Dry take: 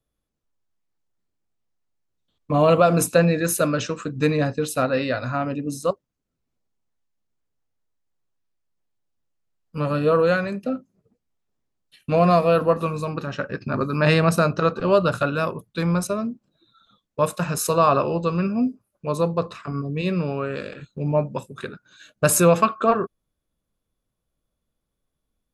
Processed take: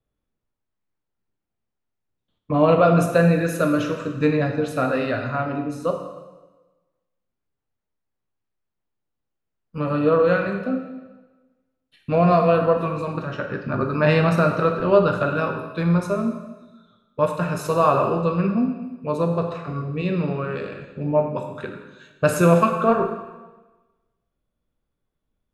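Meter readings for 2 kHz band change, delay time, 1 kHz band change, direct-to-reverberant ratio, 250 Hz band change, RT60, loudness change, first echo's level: 0.0 dB, none, +0.5 dB, 3.0 dB, +1.5 dB, 1.2 s, +0.5 dB, none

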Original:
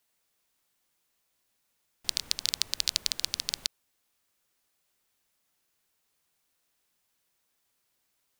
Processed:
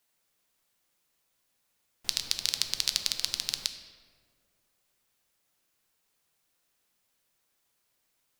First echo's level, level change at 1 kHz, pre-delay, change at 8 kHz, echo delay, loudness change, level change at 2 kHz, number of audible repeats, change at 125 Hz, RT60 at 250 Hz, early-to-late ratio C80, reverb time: none, +0.5 dB, 6 ms, +0.5 dB, none, +0.5 dB, +1.0 dB, none, +1.5 dB, 2.3 s, 10.5 dB, 1.9 s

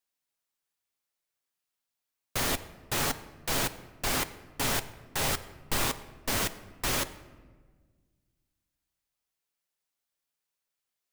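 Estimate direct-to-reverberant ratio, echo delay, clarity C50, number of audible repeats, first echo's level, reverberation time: 10.5 dB, none, 15.0 dB, none, none, 1.5 s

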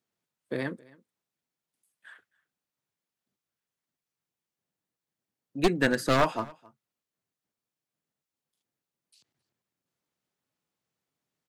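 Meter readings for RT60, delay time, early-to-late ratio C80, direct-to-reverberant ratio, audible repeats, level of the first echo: none, 0.268 s, none, none, 1, -24.0 dB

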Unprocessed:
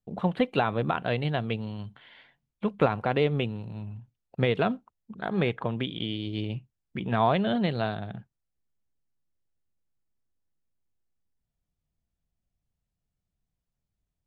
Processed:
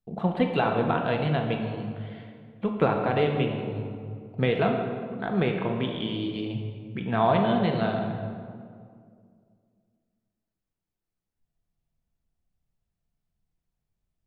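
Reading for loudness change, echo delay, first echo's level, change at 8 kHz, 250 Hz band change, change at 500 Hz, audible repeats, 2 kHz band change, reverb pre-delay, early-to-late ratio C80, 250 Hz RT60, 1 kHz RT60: +1.5 dB, none, none, n/a, +2.5 dB, +2.5 dB, none, +1.0 dB, 3 ms, 5.5 dB, 2.7 s, 2.0 s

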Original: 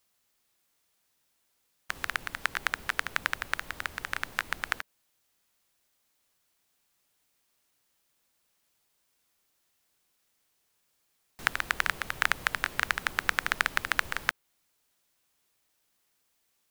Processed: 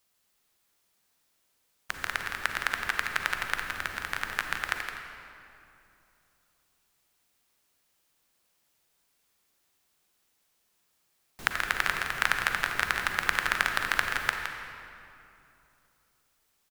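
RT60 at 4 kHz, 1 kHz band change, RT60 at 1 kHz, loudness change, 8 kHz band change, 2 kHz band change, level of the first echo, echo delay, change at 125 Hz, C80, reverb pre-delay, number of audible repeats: 1.8 s, +2.0 dB, 2.7 s, +1.5 dB, +1.5 dB, +1.5 dB, -8.5 dB, 0.165 s, +2.0 dB, 3.5 dB, 37 ms, 1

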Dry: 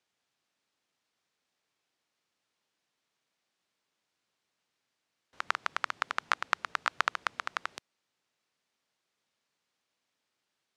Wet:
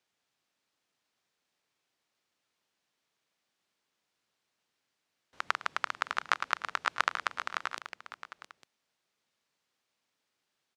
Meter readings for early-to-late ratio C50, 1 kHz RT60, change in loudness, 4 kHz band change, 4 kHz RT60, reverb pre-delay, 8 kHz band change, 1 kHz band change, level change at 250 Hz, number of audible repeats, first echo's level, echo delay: none, none, 0.0 dB, +0.5 dB, none, none, +0.5 dB, +0.5 dB, +0.5 dB, 3, -18.5 dB, 0.107 s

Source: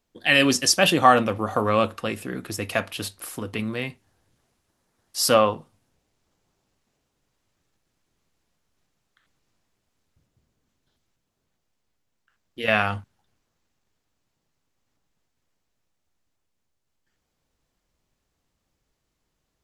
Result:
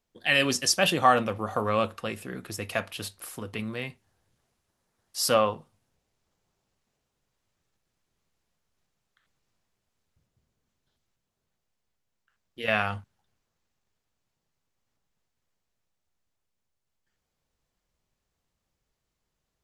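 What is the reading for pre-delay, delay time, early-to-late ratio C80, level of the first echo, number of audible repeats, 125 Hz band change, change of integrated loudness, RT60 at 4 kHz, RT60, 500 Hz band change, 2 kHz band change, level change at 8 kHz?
none, none, none, none, none, -4.5 dB, -4.5 dB, none, none, -5.0 dB, -4.5 dB, -4.5 dB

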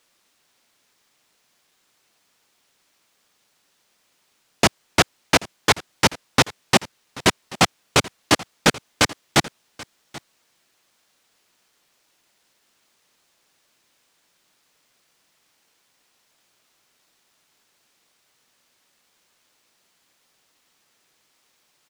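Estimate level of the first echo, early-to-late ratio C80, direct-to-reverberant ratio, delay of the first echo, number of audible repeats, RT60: -20.5 dB, none, none, 0.783 s, 1, none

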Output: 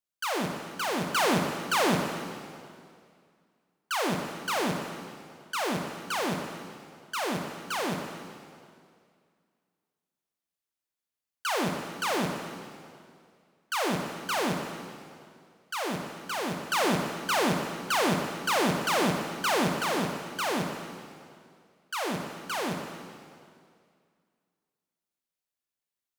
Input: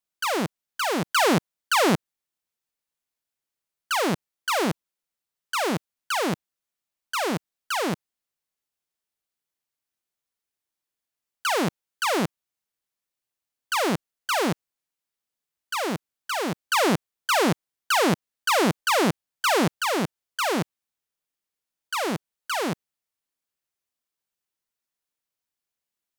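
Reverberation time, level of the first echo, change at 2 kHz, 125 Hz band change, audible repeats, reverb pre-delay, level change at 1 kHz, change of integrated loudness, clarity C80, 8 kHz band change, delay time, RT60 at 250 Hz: 2.2 s, none, -4.0 dB, -3.5 dB, none, 5 ms, -4.0 dB, -4.5 dB, 6.0 dB, -4.0 dB, none, 2.2 s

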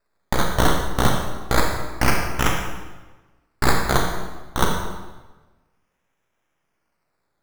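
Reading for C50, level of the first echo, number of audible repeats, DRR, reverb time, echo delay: 3.5 dB, none, none, 2.0 dB, 1.2 s, none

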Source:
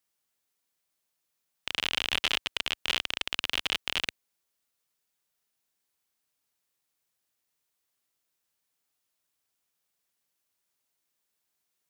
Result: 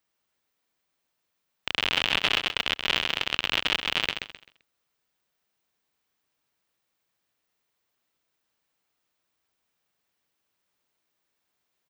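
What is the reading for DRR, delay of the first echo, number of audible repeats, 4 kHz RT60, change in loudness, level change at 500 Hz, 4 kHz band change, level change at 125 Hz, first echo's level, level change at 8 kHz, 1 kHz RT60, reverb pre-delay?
none, 0.13 s, 3, none, +4.0 dB, +7.0 dB, +4.0 dB, +7.0 dB, -6.5 dB, -1.5 dB, none, none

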